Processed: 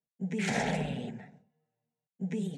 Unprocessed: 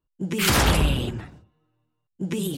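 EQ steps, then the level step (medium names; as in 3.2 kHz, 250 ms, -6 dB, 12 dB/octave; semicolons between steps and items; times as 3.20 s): cabinet simulation 220–7100 Hz, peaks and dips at 340 Hz -9 dB, 550 Hz -9 dB, 1 kHz -8 dB, 1.5 kHz -6 dB, 2.9 kHz -6 dB, 4.8 kHz -8 dB; resonant high shelf 2.4 kHz -9.5 dB, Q 1.5; static phaser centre 320 Hz, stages 6; 0.0 dB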